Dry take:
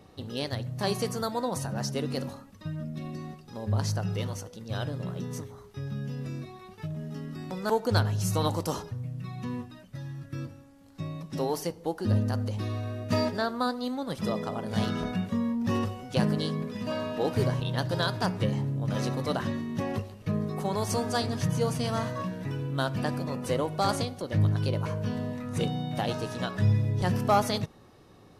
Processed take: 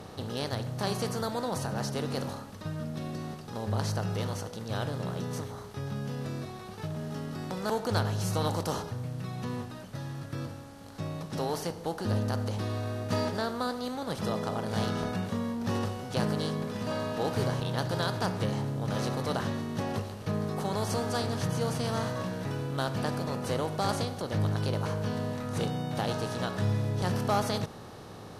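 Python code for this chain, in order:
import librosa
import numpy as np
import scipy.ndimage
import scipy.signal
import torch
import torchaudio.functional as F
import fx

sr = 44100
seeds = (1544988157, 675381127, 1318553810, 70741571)

y = fx.bin_compress(x, sr, power=0.6)
y = y * librosa.db_to_amplitude(-6.5)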